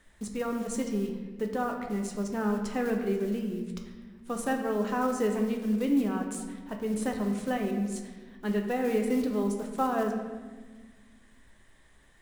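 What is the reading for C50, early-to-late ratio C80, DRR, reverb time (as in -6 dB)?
5.5 dB, 7.0 dB, 2.5 dB, 1.4 s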